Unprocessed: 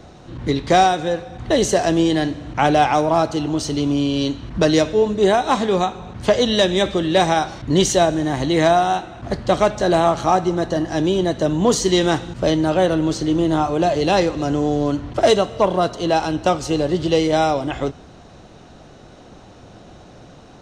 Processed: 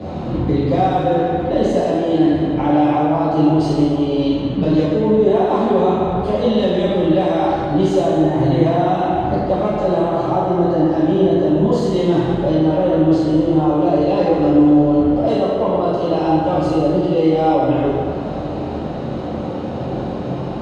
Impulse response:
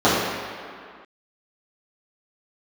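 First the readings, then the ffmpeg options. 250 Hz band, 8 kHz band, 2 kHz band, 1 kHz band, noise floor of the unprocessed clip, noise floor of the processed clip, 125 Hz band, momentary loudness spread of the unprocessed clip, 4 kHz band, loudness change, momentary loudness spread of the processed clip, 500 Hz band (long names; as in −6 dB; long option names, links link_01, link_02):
+5.0 dB, below −15 dB, −6.5 dB, 0.0 dB, −44 dBFS, −24 dBFS, +4.5 dB, 6 LU, −8.0 dB, +2.0 dB, 9 LU, +2.0 dB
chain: -filter_complex "[0:a]areverse,acompressor=threshold=-25dB:ratio=6,areverse,alimiter=level_in=2dB:limit=-24dB:level=0:latency=1:release=331,volume=-2dB[link_01];[1:a]atrim=start_sample=2205,asetrate=31752,aresample=44100[link_02];[link_01][link_02]afir=irnorm=-1:irlink=0,volume=-11dB"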